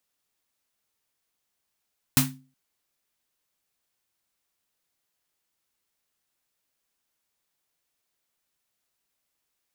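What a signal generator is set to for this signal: snare drum length 0.37 s, tones 140 Hz, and 260 Hz, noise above 710 Hz, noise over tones 2.5 dB, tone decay 0.39 s, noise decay 0.23 s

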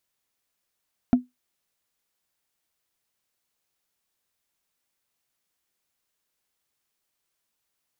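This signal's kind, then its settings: wood hit, lowest mode 249 Hz, decay 0.17 s, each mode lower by 10.5 dB, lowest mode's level -9.5 dB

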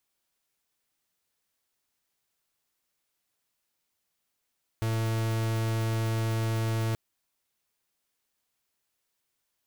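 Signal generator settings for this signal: pulse 112 Hz, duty 44% -28 dBFS 2.13 s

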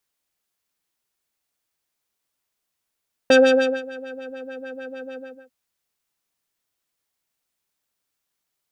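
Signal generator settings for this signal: synth patch with filter wobble C5, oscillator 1 square, interval +19 st, oscillator 2 level -10 dB, sub -7 dB, noise -16 dB, filter lowpass, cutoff 570 Hz, Q 1.3, filter envelope 1.5 oct, filter decay 1.10 s, filter sustain 45%, attack 3.4 ms, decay 0.52 s, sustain -22.5 dB, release 0.34 s, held 1.86 s, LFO 6.7 Hz, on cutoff 1.7 oct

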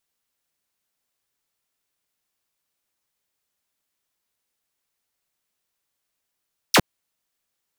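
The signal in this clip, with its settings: laser zap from 6600 Hz, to 98 Hz, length 0.06 s saw, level -9 dB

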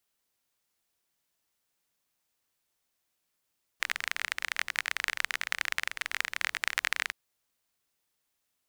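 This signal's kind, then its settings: rain from filtered ticks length 3.32 s, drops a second 27, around 1900 Hz, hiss -29 dB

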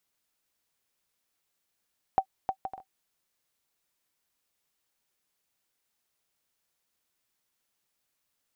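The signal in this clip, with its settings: bouncing ball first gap 0.31 s, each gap 0.52, 768 Hz, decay 76 ms -12.5 dBFS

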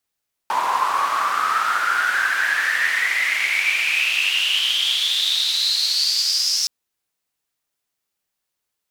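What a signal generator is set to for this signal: swept filtered noise white, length 6.17 s bandpass, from 940 Hz, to 5400 Hz, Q 10, exponential, gain ramp -7 dB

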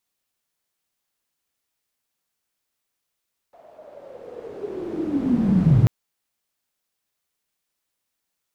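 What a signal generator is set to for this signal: swept filtered noise pink, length 2.34 s bandpass, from 680 Hz, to 110 Hz, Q 9, linear, gain ramp +38 dB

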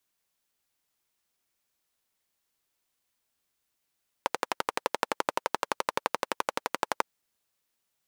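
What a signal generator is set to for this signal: single-cylinder engine model, steady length 2.76 s, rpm 1400, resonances 540/890 Hz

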